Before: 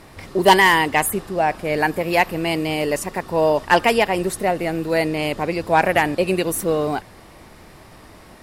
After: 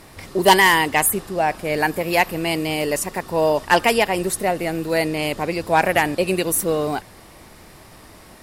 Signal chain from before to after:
high-shelf EQ 4,800 Hz +7 dB
level −1 dB

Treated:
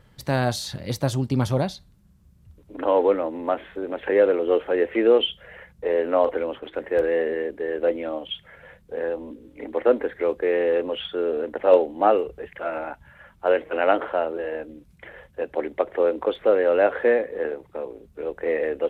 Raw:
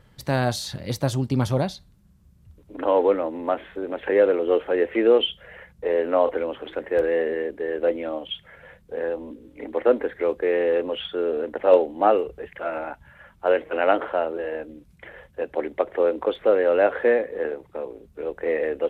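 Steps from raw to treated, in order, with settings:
0:06.24–0:06.74: noise gate −35 dBFS, range −8 dB

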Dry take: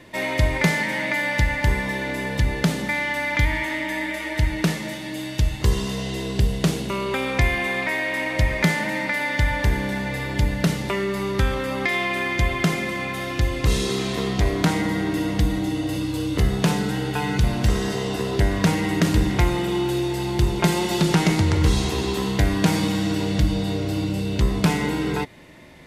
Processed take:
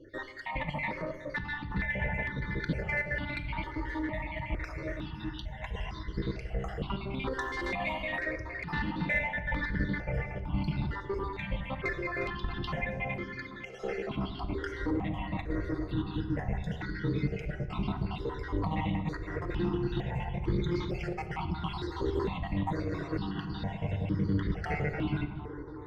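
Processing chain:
time-frequency cells dropped at random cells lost 61%
high-frequency loss of the air 270 metres
on a send: bucket-brigade delay 367 ms, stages 4,096, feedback 79%, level −14 dB
on the sum: compressor whose output falls as the input rises −24 dBFS, ratio −0.5
0:13.16–0:14.11: elliptic high-pass filter 210 Hz
tube saturation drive 17 dB, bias 0.45
0:07.32–0:08.23: high-shelf EQ 5,500 Hz +12 dB
rectangular room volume 680 cubic metres, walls mixed, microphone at 0.61 metres
step-sequenced phaser 2.2 Hz 680–2,700 Hz
level −1 dB

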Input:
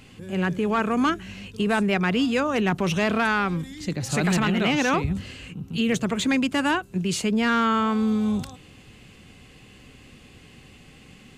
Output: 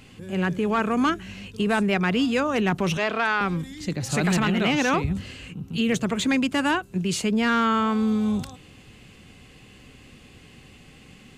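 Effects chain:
0:02.97–0:03.41: three-way crossover with the lows and the highs turned down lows −13 dB, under 350 Hz, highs −12 dB, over 6,100 Hz

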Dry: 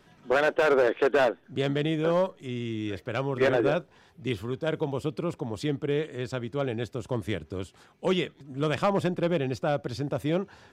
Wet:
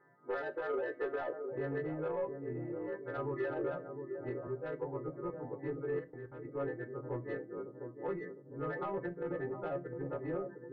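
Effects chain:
every partial snapped to a pitch grid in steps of 2 semitones
brickwall limiter −19.5 dBFS, peak gain reduction 9.5 dB
reverb reduction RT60 0.85 s
feedback echo with a band-pass in the loop 706 ms, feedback 55%, band-pass 330 Hz, level −6 dB
brick-wall band-pass 110–2,200 Hz
soft clipping −22.5 dBFS, distortion −20 dB
0:05.99–0:06.45: output level in coarse steps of 20 dB
convolution reverb RT60 0.35 s, pre-delay 3 ms, DRR 11.5 dB
0:04.47–0:05.34: multiband upward and downward expander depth 70%
level −8.5 dB

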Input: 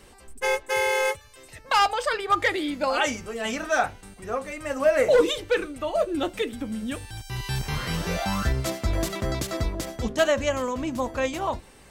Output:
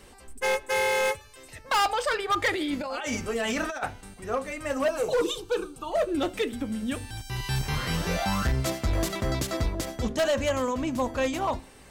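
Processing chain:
0:04.88–0:05.92: phaser with its sweep stopped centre 390 Hz, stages 8
convolution reverb RT60 0.50 s, pre-delay 4 ms, DRR 20 dB
0:02.53–0:03.83: compressor whose output falls as the input rises −30 dBFS, ratio −1
hard clipping −20 dBFS, distortion −13 dB

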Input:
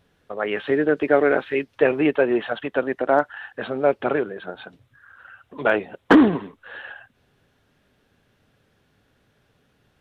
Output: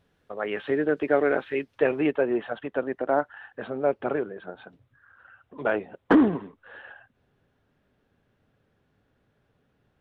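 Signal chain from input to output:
high-shelf EQ 2,600 Hz −3 dB, from 0:02.12 −11.5 dB
level −4.5 dB

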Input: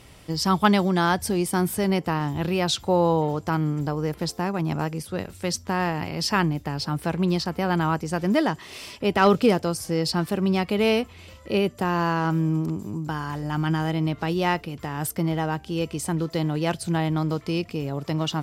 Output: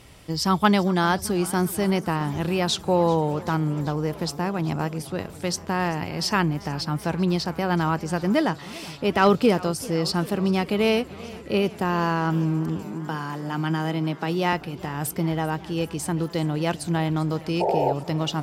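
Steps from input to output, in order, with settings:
0:12.84–0:14.53: Butterworth high-pass 150 Hz
0:17.60–0:17.93: sound drawn into the spectrogram noise 350–930 Hz −22 dBFS
feedback echo with a swinging delay time 391 ms, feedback 77%, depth 104 cents, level −20 dB

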